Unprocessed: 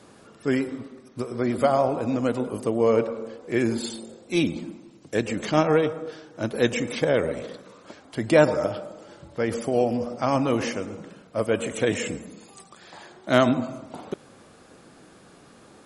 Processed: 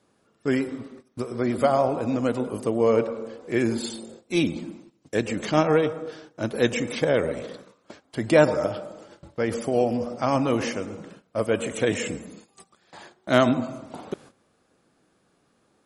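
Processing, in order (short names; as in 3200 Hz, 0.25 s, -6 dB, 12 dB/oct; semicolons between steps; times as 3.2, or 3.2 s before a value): gate -45 dBFS, range -15 dB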